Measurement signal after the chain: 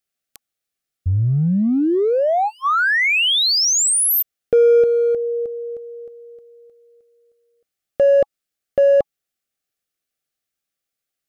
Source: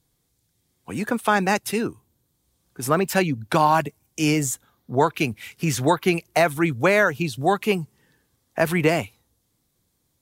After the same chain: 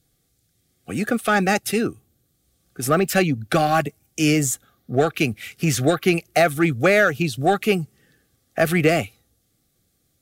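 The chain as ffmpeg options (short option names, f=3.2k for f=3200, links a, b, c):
-filter_complex "[0:a]asplit=2[a][b];[b]asoftclip=type=hard:threshold=-18.5dB,volume=-7.5dB[c];[a][c]amix=inputs=2:normalize=0,asuperstop=centerf=960:order=12:qfactor=3.5"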